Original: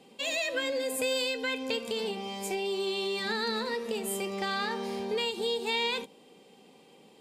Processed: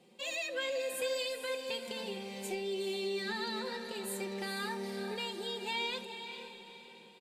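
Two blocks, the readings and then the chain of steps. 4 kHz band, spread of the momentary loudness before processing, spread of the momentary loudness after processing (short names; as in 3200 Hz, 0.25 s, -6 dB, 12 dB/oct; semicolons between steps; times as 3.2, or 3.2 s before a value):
-6.0 dB, 5 LU, 9 LU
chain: comb 5.6 ms, depth 70%; diffused feedback echo 0.451 s, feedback 43%, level -8.5 dB; gain -8 dB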